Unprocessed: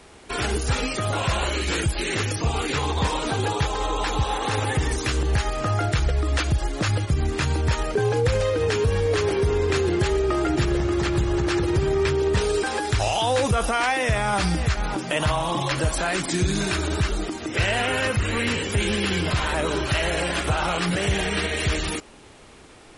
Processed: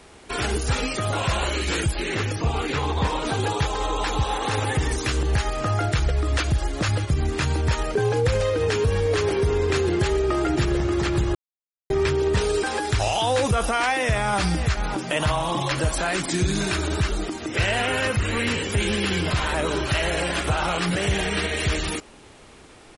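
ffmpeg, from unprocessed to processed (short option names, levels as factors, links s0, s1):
-filter_complex "[0:a]asettb=1/sr,asplit=3[s0][s1][s2];[s0]atrim=end=1.964[s3];[s1]atrim=start=1.96:end=3.25,asetpts=PTS-STARTPTS,afade=t=in:d=0.004:c=qsin,afade=t=out:st=1.286:d=0.004:c=qsin,aemphasis=mode=reproduction:type=cd[s4];[s2]atrim=start=3.246[s5];[s3][s4]acrossfade=d=0.004:c1=hsin:c2=qsin[s6];[s6][s5]acrossfade=d=0.004:c1=qsin:c2=hsin,asplit=2[s7][s8];[s8]afade=t=in:st=5.57:d=0.01,afade=t=out:st=6.5:d=0.01,aecho=0:1:600|1200|1800:0.133352|0.0466733|0.0163356[s9];[s7][s9]amix=inputs=2:normalize=0,asplit=3[s10][s11][s12];[s10]atrim=end=11.35,asetpts=PTS-STARTPTS,afade=t=out:st=11.346:d=0.004:c=hsin[s13];[s11]atrim=start=11.35:end=11.9,asetpts=PTS-STARTPTS,volume=0[s14];[s12]atrim=start=11.9,asetpts=PTS-STARTPTS,afade=t=in:d=0.004:c=hsin[s15];[s13][s14][s15]concat=n=3:v=0:a=1"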